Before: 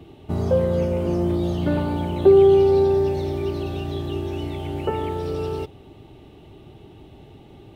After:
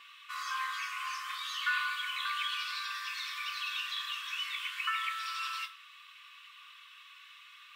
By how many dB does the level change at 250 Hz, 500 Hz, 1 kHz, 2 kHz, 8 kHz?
under -40 dB, under -40 dB, -5.5 dB, +8.5 dB, n/a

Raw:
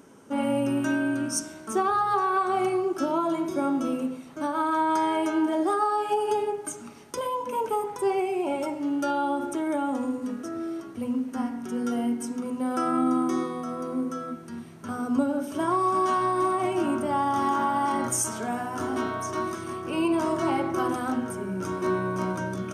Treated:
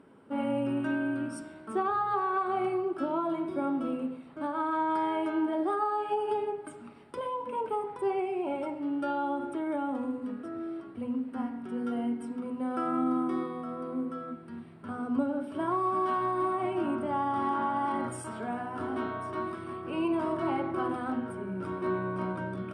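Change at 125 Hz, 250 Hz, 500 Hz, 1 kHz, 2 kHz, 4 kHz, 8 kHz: -4.5 dB, -4.5 dB, -4.5 dB, -5.0 dB, -5.5 dB, -9.5 dB, under -15 dB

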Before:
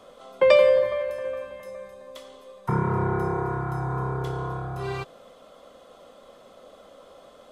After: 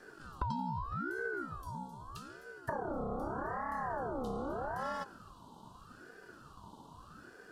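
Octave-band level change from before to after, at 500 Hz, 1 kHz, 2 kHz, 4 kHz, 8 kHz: -19.0 dB, -6.5 dB, -8.0 dB, -18.0 dB, n/a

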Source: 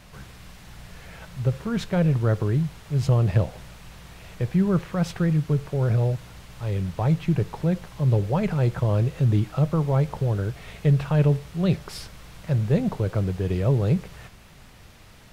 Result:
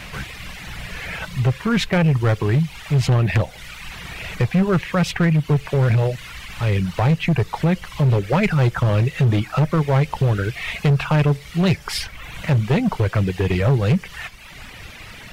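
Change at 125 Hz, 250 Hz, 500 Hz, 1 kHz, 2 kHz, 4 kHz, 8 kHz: +4.0 dB, +4.0 dB, +4.5 dB, +8.0 dB, +13.0 dB, +11.5 dB, n/a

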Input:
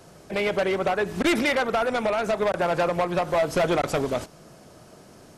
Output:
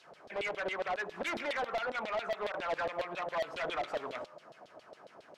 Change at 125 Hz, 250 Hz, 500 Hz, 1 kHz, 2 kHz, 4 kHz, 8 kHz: -22.5, -20.0, -13.0, -10.0, -9.0, -10.5, -16.5 dB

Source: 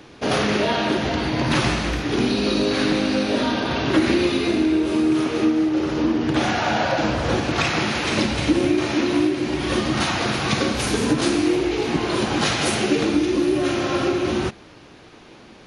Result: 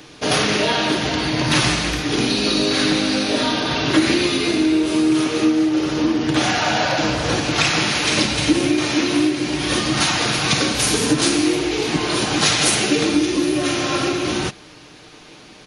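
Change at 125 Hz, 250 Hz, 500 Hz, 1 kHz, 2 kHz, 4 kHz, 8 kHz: +1.0, +1.5, 0.0, +1.5, +4.0, +6.5, +9.5 dB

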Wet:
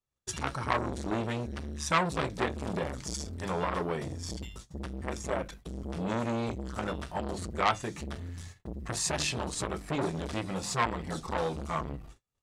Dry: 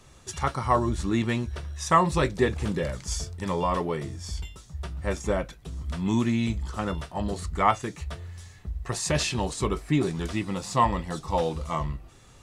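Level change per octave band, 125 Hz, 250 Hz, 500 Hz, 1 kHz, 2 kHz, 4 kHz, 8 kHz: -7.0, -7.0, -5.5, -6.0, -2.0, -2.5, -2.0 dB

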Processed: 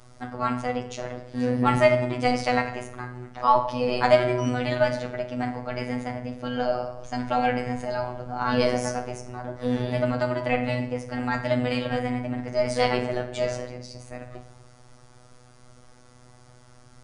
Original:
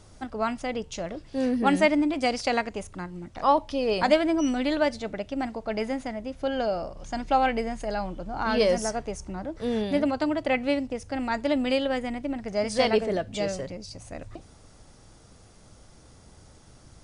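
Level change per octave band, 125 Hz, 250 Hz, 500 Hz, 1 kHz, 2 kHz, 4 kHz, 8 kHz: +10.5, -1.5, +1.5, +1.5, +1.5, -1.5, -2.5 dB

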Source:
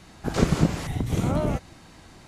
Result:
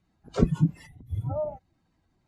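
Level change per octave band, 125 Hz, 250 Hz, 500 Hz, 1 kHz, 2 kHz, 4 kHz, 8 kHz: -3.0 dB, -3.5 dB, -3.0 dB, -9.0 dB, -13.5 dB, under -10 dB, under -15 dB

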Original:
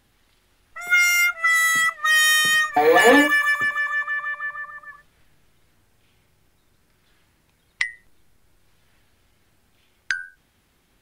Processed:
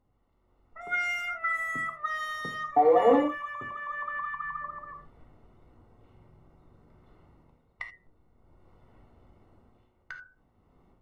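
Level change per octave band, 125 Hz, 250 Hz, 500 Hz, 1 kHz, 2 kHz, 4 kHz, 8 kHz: n/a, -7.0 dB, -4.5 dB, -5.0 dB, -15.5 dB, -22.0 dB, under -25 dB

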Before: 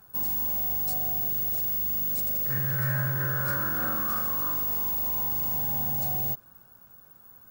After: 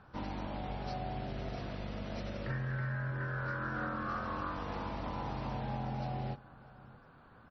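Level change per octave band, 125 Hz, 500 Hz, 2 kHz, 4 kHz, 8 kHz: -4.0 dB, -1.0 dB, -5.0 dB, -5.0 dB, under -25 dB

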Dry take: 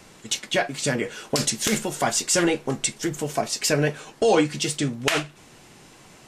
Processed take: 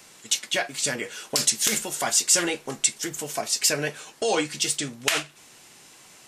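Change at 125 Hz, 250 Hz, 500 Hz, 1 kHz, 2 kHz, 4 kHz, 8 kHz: -10.5, -8.0, -6.0, -4.0, -1.0, +1.5, +3.5 dB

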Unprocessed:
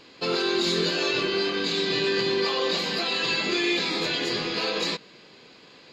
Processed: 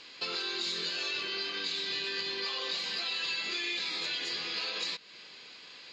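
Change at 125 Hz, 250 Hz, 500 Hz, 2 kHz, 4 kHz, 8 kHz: -20.5, -19.0, -18.0, -7.5, -5.5, -7.5 dB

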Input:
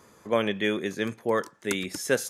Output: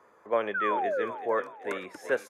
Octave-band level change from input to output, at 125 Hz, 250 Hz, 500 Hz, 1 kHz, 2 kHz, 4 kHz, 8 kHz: under -15 dB, -10.0 dB, -1.5 dB, +4.5 dB, -2.0 dB, -13.5 dB, under -15 dB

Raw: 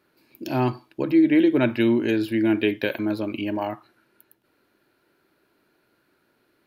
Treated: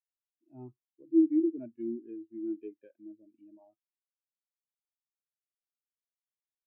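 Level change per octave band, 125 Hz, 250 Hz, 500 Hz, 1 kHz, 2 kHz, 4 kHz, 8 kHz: under -25 dB, -10.5 dB, -14.0 dB, under -35 dB, under -40 dB, under -40 dB, n/a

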